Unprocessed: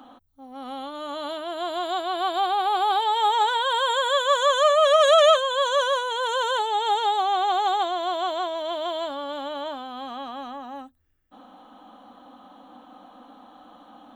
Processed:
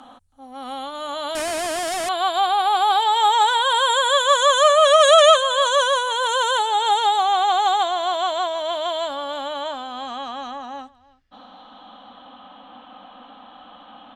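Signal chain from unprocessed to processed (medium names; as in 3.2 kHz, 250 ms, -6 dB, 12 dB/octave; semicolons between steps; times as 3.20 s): peaking EQ 340 Hz -8.5 dB 0.84 oct; delay 322 ms -22 dB; 1.35–2.09 s: Schmitt trigger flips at -44.5 dBFS; low-pass sweep 9.4 kHz -> 3 kHz, 9.49–12.47 s; trim +5 dB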